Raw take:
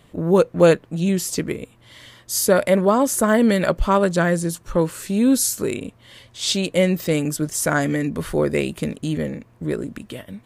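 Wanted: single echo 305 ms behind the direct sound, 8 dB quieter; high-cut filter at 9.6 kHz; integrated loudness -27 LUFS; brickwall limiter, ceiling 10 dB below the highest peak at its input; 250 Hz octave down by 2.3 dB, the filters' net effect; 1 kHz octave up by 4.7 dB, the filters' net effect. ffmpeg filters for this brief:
-af "lowpass=9600,equalizer=f=250:t=o:g=-3.5,equalizer=f=1000:t=o:g=6,alimiter=limit=0.251:level=0:latency=1,aecho=1:1:305:0.398,volume=0.631"

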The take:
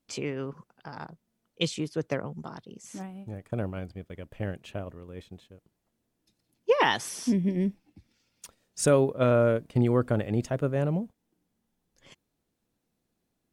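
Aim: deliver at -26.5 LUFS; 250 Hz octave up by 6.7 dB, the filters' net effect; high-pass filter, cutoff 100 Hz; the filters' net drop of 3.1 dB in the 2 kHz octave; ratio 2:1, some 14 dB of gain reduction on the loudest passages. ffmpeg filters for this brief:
-af "highpass=100,equalizer=f=250:t=o:g=8.5,equalizer=f=2000:t=o:g=-4,acompressor=threshold=0.01:ratio=2,volume=3.55"

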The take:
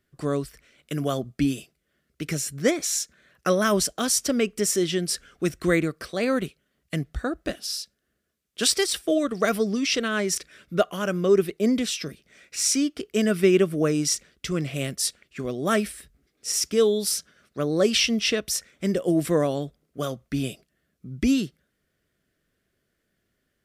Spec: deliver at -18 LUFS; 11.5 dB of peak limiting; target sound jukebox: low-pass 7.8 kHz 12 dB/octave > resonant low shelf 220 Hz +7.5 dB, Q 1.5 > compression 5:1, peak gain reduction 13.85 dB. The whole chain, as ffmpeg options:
-af "alimiter=limit=0.119:level=0:latency=1,lowpass=7800,lowshelf=f=220:t=q:w=1.5:g=7.5,acompressor=threshold=0.0251:ratio=5,volume=7.94"

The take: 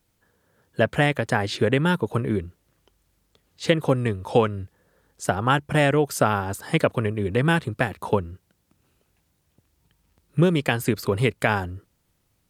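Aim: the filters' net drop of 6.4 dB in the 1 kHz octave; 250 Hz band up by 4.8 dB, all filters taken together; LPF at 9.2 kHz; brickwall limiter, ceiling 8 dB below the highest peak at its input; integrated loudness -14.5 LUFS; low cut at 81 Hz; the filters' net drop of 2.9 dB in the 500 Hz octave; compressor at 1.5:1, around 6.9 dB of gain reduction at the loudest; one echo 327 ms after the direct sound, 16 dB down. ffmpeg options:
-af "highpass=81,lowpass=9200,equalizer=f=250:t=o:g=8.5,equalizer=f=500:t=o:g=-4.5,equalizer=f=1000:t=o:g=-8,acompressor=threshold=0.0251:ratio=1.5,alimiter=limit=0.133:level=0:latency=1,aecho=1:1:327:0.158,volume=6.31"

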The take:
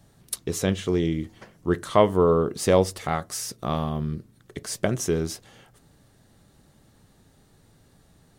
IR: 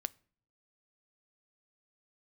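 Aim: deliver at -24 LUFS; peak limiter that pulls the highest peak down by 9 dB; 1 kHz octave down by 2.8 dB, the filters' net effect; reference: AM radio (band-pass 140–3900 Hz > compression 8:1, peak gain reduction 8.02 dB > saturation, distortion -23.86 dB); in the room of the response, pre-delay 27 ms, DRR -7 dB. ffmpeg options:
-filter_complex "[0:a]equalizer=f=1000:t=o:g=-3.5,alimiter=limit=0.188:level=0:latency=1,asplit=2[s0][s1];[1:a]atrim=start_sample=2205,adelay=27[s2];[s1][s2]afir=irnorm=-1:irlink=0,volume=2.51[s3];[s0][s3]amix=inputs=2:normalize=0,highpass=140,lowpass=3900,acompressor=threshold=0.126:ratio=8,asoftclip=threshold=0.335,volume=1.33"

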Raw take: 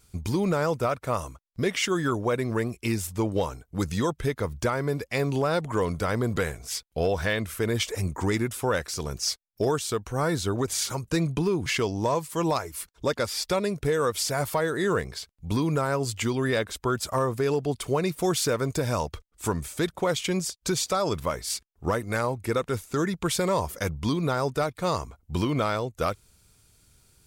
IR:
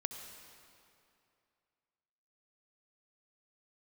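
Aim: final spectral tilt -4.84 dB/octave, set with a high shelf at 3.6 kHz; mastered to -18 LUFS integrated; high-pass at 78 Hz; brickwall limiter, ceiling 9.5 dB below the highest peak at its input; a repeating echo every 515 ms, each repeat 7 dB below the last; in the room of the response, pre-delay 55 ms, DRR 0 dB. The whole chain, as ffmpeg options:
-filter_complex "[0:a]highpass=78,highshelf=f=3600:g=-3.5,alimiter=limit=0.075:level=0:latency=1,aecho=1:1:515|1030|1545|2060|2575:0.447|0.201|0.0905|0.0407|0.0183,asplit=2[s0][s1];[1:a]atrim=start_sample=2205,adelay=55[s2];[s1][s2]afir=irnorm=-1:irlink=0,volume=1[s3];[s0][s3]amix=inputs=2:normalize=0,volume=3.35"

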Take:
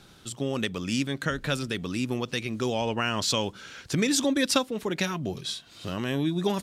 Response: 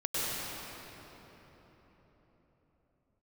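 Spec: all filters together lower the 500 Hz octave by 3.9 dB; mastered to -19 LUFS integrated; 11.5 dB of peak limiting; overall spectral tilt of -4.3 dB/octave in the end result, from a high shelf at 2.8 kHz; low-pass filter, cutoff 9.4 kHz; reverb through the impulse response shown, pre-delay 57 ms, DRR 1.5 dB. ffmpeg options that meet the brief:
-filter_complex "[0:a]lowpass=9400,equalizer=f=500:t=o:g=-5,highshelf=f=2800:g=3.5,alimiter=limit=0.0794:level=0:latency=1,asplit=2[s0][s1];[1:a]atrim=start_sample=2205,adelay=57[s2];[s1][s2]afir=irnorm=-1:irlink=0,volume=0.299[s3];[s0][s3]amix=inputs=2:normalize=0,volume=3.55"

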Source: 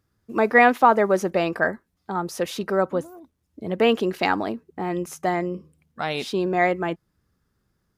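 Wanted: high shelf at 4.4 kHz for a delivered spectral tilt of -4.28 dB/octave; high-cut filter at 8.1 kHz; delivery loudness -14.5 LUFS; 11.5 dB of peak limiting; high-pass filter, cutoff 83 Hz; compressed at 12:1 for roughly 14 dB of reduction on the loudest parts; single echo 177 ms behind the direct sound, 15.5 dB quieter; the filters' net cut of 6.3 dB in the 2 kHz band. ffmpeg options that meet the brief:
-af "highpass=83,lowpass=8100,equalizer=f=2000:t=o:g=-9,highshelf=f=4400:g=8,acompressor=threshold=0.0501:ratio=12,alimiter=level_in=1.41:limit=0.0631:level=0:latency=1,volume=0.708,aecho=1:1:177:0.168,volume=13.3"

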